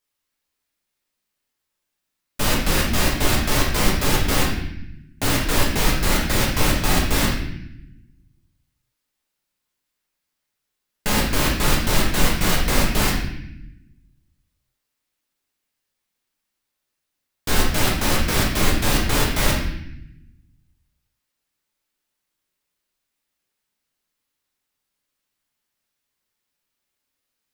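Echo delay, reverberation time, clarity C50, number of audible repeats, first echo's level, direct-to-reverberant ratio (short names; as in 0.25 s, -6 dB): none, 0.80 s, 2.5 dB, none, none, -3.5 dB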